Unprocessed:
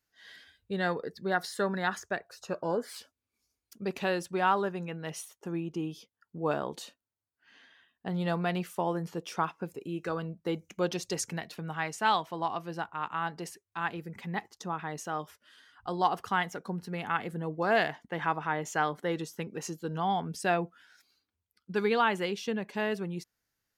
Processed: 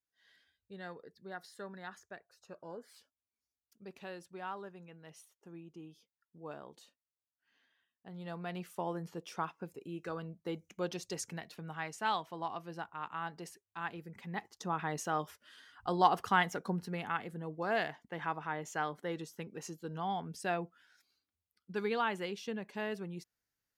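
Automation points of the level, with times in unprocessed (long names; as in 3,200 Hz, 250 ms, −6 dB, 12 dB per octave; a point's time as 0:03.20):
0:08.07 −16 dB
0:08.77 −7 dB
0:14.25 −7 dB
0:14.81 +0.5 dB
0:16.71 +0.5 dB
0:17.26 −7 dB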